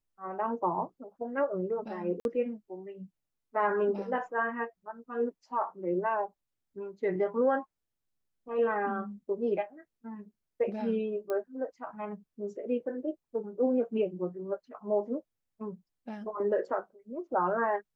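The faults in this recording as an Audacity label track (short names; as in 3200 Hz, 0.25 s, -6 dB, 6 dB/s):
2.200000	2.250000	gap 51 ms
11.300000	11.300000	pop -23 dBFS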